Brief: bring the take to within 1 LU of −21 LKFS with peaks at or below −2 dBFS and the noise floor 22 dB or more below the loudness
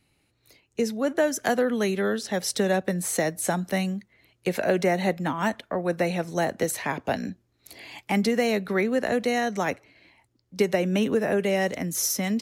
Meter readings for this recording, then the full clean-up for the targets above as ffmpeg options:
integrated loudness −26.0 LKFS; sample peak −9.5 dBFS; target loudness −21.0 LKFS
→ -af "volume=5dB"

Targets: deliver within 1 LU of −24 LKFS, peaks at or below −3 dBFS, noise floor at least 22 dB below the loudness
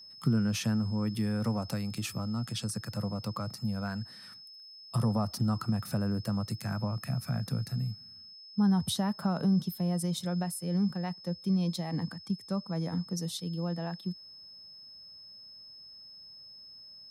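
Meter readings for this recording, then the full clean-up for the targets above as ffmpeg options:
interfering tone 5,200 Hz; level of the tone −48 dBFS; integrated loudness −32.5 LKFS; sample peak −15.5 dBFS; target loudness −24.0 LKFS
→ -af "bandreject=frequency=5200:width=30"
-af "volume=8.5dB"

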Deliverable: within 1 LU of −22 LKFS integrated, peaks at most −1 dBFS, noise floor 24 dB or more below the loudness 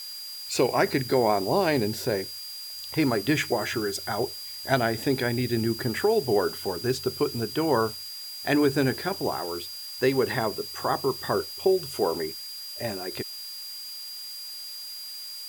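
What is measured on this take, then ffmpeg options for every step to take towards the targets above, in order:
interfering tone 4,800 Hz; level of the tone −37 dBFS; background noise floor −39 dBFS; target noise floor −51 dBFS; integrated loudness −27.0 LKFS; sample peak −9.0 dBFS; target loudness −22.0 LKFS
→ -af "bandreject=frequency=4800:width=30"
-af "afftdn=noise_reduction=12:noise_floor=-39"
-af "volume=5dB"

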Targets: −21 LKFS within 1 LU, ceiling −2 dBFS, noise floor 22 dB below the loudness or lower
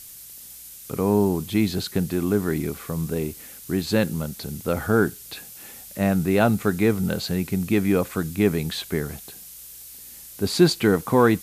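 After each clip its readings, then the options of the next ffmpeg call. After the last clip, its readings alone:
background noise floor −43 dBFS; target noise floor −46 dBFS; integrated loudness −23.5 LKFS; sample peak −5.0 dBFS; target loudness −21.0 LKFS
→ -af "afftdn=noise_reduction=6:noise_floor=-43"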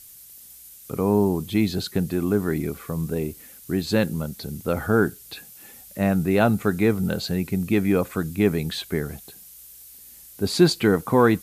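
background noise floor −46 dBFS; integrated loudness −23.5 LKFS; sample peak −5.0 dBFS; target loudness −21.0 LKFS
→ -af "volume=2.5dB"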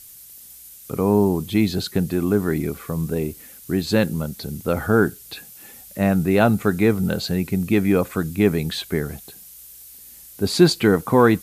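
integrated loudness −21.0 LKFS; sample peak −2.5 dBFS; background noise floor −44 dBFS

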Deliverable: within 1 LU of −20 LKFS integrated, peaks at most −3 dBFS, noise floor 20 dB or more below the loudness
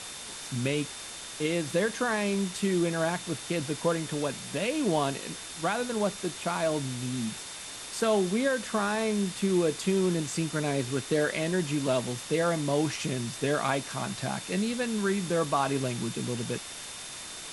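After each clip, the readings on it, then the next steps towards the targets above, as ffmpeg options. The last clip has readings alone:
interfering tone 3,600 Hz; level of the tone −48 dBFS; background noise floor −41 dBFS; target noise floor −50 dBFS; integrated loudness −29.5 LKFS; sample peak −13.5 dBFS; target loudness −20.0 LKFS
→ -af "bandreject=frequency=3600:width=30"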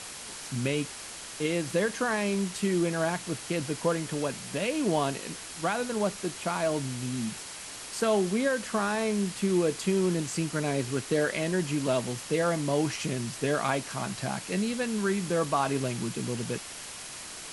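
interfering tone none found; background noise floor −42 dBFS; target noise floor −50 dBFS
→ -af "afftdn=noise_reduction=8:noise_floor=-42"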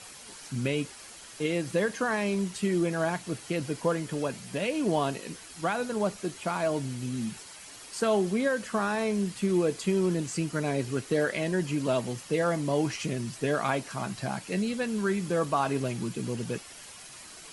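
background noise floor −47 dBFS; target noise floor −50 dBFS
→ -af "afftdn=noise_reduction=6:noise_floor=-47"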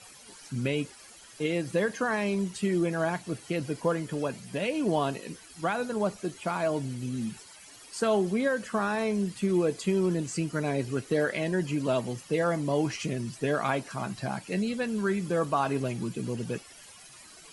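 background noise floor −51 dBFS; integrated loudness −30.0 LKFS; sample peak −13.5 dBFS; target loudness −20.0 LKFS
→ -af "volume=10dB"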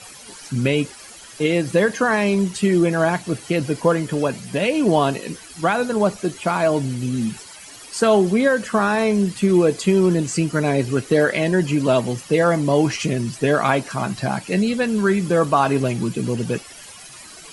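integrated loudness −20.0 LKFS; sample peak −3.5 dBFS; background noise floor −41 dBFS

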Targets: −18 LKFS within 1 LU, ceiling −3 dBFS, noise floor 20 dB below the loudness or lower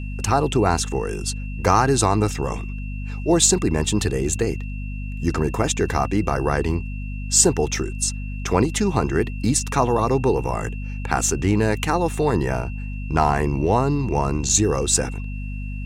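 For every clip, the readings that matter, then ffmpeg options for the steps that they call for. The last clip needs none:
mains hum 50 Hz; hum harmonics up to 250 Hz; level of the hum −27 dBFS; interfering tone 2,700 Hz; level of the tone −41 dBFS; integrated loudness −21.0 LKFS; sample peak −2.0 dBFS; target loudness −18.0 LKFS
→ -af "bandreject=frequency=50:width_type=h:width=6,bandreject=frequency=100:width_type=h:width=6,bandreject=frequency=150:width_type=h:width=6,bandreject=frequency=200:width_type=h:width=6,bandreject=frequency=250:width_type=h:width=6"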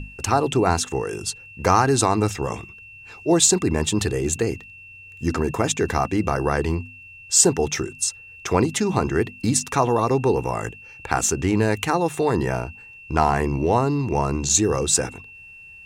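mains hum none found; interfering tone 2,700 Hz; level of the tone −41 dBFS
→ -af "bandreject=frequency=2700:width=30"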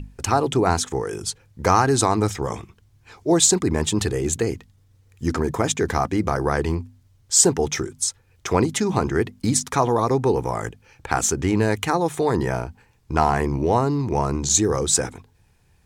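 interfering tone none found; integrated loudness −21.5 LKFS; sample peak −2.5 dBFS; target loudness −18.0 LKFS
→ -af "volume=3.5dB,alimiter=limit=-3dB:level=0:latency=1"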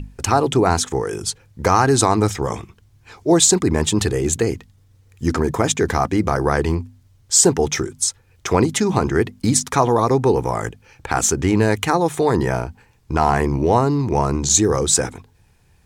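integrated loudness −18.5 LKFS; sample peak −3.0 dBFS; background noise floor −55 dBFS

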